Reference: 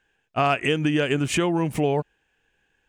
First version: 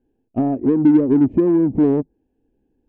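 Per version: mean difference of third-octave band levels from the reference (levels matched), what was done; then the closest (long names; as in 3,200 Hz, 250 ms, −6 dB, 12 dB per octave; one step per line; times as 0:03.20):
11.0 dB: treble cut that deepens with the level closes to 890 Hz, closed at −21.5 dBFS
drawn EQ curve 110 Hz 0 dB, 160 Hz −5 dB, 260 Hz +11 dB, 470 Hz −3 dB, 880 Hz −13 dB, 1,300 Hz −30 dB
in parallel at −4 dB: soft clipping −24 dBFS, distortion −7 dB
on the sum: level +2.5 dB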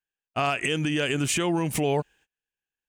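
3.5 dB: noise gate −53 dBFS, range −27 dB
high-shelf EQ 3,100 Hz +11.5 dB
brickwall limiter −14.5 dBFS, peak gain reduction 9.5 dB
level −1 dB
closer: second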